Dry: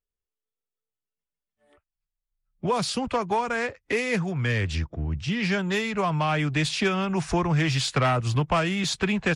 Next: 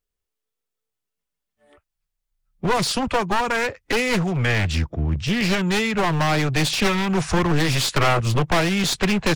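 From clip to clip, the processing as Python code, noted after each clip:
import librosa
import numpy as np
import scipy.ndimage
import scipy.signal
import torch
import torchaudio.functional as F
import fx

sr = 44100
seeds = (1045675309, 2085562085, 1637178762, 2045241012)

y = np.minimum(x, 2.0 * 10.0 ** (-25.5 / 20.0) - x)
y = y * 10.0 ** (6.5 / 20.0)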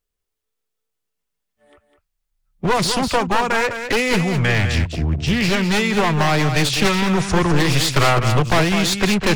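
y = x + 10.0 ** (-8.0 / 20.0) * np.pad(x, (int(204 * sr / 1000.0), 0))[:len(x)]
y = y * 10.0 ** (2.5 / 20.0)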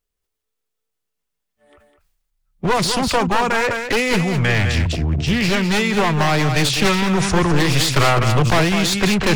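y = fx.sustainer(x, sr, db_per_s=49.0)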